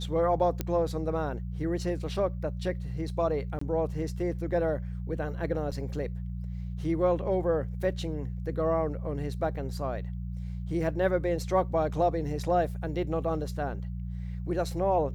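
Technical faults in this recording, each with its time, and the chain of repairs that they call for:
hum 60 Hz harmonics 3 -35 dBFS
0.61 pop -15 dBFS
3.59–3.61 gap 24 ms
5.71–5.72 gap 7 ms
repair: de-click; de-hum 60 Hz, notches 3; interpolate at 3.59, 24 ms; interpolate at 5.71, 7 ms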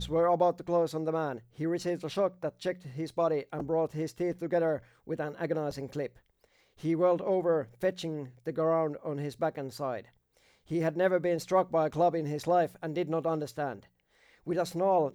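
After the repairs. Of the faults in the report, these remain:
none

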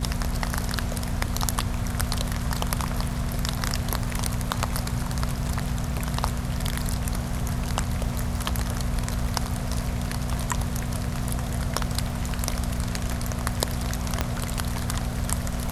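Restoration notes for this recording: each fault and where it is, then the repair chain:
crackle 21/s -33 dBFS
hum 60 Hz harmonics 4 -31 dBFS
14.21 pop -7 dBFS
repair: de-click; de-hum 60 Hz, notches 4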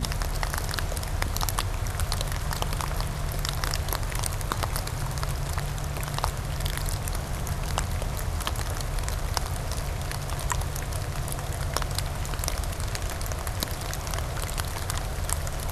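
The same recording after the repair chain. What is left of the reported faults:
14.21 pop

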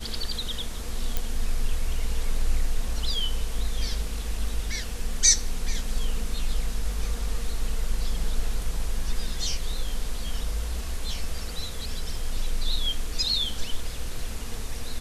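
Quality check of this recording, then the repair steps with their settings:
1.17 pop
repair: de-click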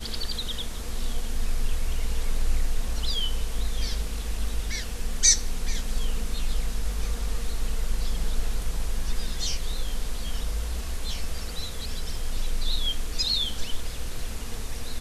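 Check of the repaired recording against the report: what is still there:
none

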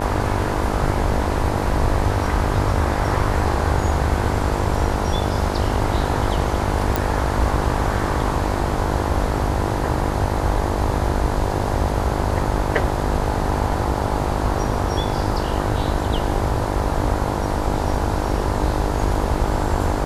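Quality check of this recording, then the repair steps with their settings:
buzz 50 Hz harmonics 20 -25 dBFS
6.96 pop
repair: de-click; de-hum 50 Hz, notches 20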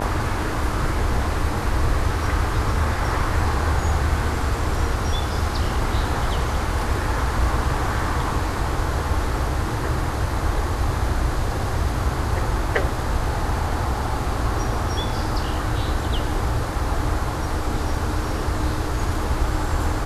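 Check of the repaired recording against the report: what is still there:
none

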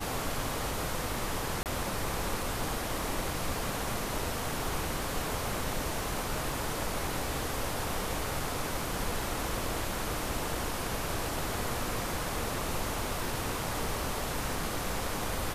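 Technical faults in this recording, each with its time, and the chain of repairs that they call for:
1.63–1.66 gap 28 ms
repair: interpolate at 1.63, 28 ms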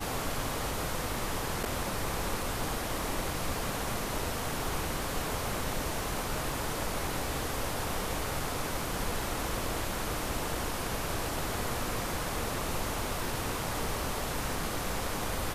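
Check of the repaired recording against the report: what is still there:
none

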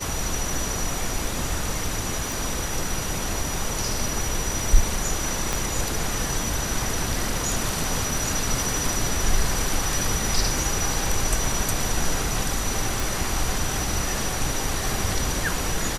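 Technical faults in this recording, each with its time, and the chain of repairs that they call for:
2.32 pop
5.53 pop
13 pop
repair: de-click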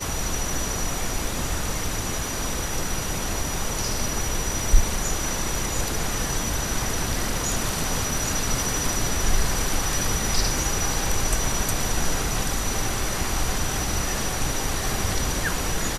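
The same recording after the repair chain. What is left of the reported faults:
5.53 pop

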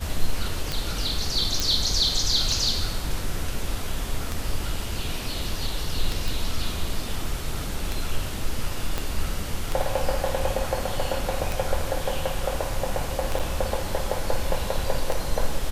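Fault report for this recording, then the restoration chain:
tick 33 1/3 rpm
1.6 pop
6.28 pop
8.98 pop -11 dBFS
13.39–13.4 gap 6.2 ms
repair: de-click; interpolate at 13.39, 6.2 ms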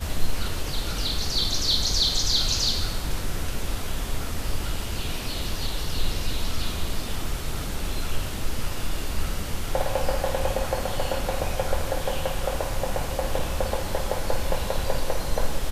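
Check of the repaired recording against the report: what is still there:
8.98 pop

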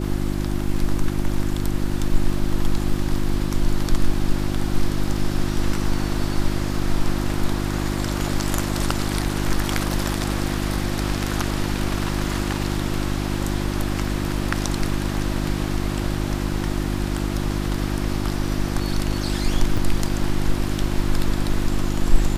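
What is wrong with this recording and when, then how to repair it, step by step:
hum 50 Hz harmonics 7 -25 dBFS
19.77–19.78 gap 5.4 ms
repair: de-hum 50 Hz, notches 7; interpolate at 19.77, 5.4 ms

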